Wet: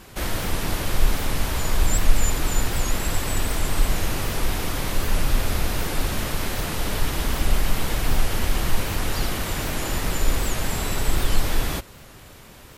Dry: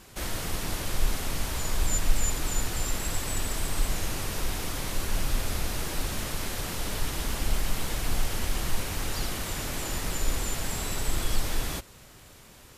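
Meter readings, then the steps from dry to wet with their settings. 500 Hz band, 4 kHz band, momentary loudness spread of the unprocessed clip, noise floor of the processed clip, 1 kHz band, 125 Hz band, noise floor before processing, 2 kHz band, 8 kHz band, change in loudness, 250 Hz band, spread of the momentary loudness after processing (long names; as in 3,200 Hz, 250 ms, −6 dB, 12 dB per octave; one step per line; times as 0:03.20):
+7.0 dB, +4.5 dB, 4 LU, −45 dBFS, +7.0 dB, +7.0 dB, −51 dBFS, +6.5 dB, +2.5 dB, +5.5 dB, +7.0 dB, 3 LU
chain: parametric band 7,400 Hz −5 dB 1.7 octaves
wow of a warped record 78 rpm, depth 160 cents
level +7 dB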